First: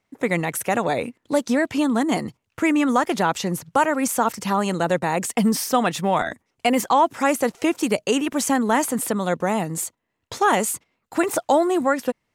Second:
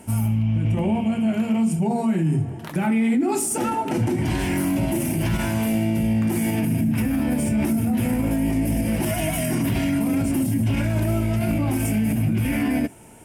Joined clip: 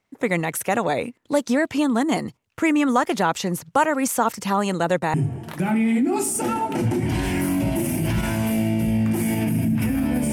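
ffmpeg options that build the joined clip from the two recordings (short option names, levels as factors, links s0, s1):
-filter_complex "[0:a]apad=whole_dur=10.32,atrim=end=10.32,atrim=end=5.142[s0];[1:a]atrim=start=2.298:end=7.48[s1];[s0][s1]acrossfade=d=0.004:c1=hsin:c2=hsin"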